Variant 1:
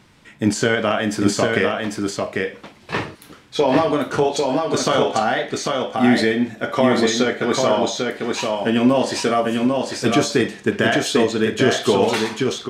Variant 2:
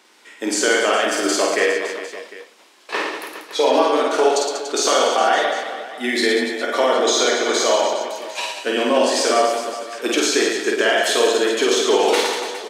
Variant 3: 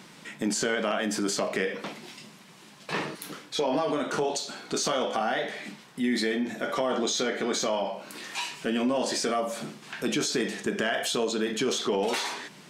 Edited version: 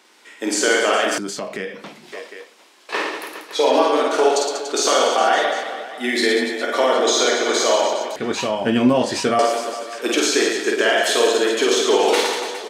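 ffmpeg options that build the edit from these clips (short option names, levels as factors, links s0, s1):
-filter_complex "[1:a]asplit=3[s0][s1][s2];[s0]atrim=end=1.182[s3];[2:a]atrim=start=1.178:end=2.122[s4];[s1]atrim=start=2.118:end=8.162[s5];[0:a]atrim=start=8.158:end=9.392[s6];[s2]atrim=start=9.388[s7];[s3][s4]acrossfade=d=0.004:c1=hsin:c2=hsin[s8];[s8][s5]acrossfade=d=0.004:c1=hsin:c2=hsin[s9];[s9][s6]acrossfade=d=0.004:c1=hsin:c2=hsin[s10];[s10][s7]acrossfade=d=0.004:c1=hsin:c2=hsin"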